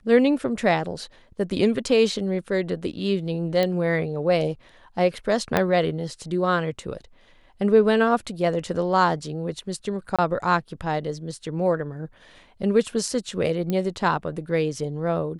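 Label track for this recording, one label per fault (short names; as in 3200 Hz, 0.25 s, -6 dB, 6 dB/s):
3.630000	3.630000	pop -11 dBFS
5.570000	5.570000	pop -6 dBFS
10.160000	10.190000	gap 26 ms
13.700000	13.700000	pop -14 dBFS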